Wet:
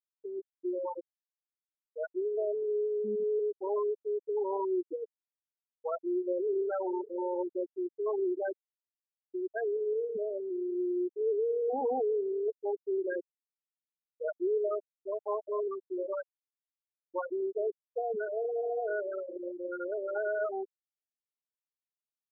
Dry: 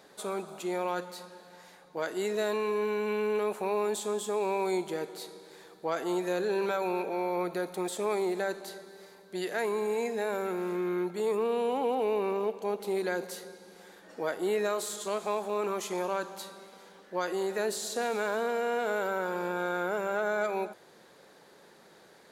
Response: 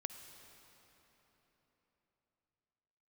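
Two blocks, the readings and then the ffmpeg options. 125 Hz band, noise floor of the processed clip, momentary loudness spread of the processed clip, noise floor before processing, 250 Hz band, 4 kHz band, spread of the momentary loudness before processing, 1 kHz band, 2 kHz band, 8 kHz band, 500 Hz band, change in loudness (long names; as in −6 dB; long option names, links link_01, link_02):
below −20 dB, below −85 dBFS, 9 LU, −57 dBFS, −2.5 dB, below −40 dB, 12 LU, −7.0 dB, −9.5 dB, below −40 dB, −1.0 dB, −2.0 dB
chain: -af "afftfilt=real='re*gte(hypot(re,im),0.158)':imag='im*gte(hypot(re,im),0.158)':win_size=1024:overlap=0.75"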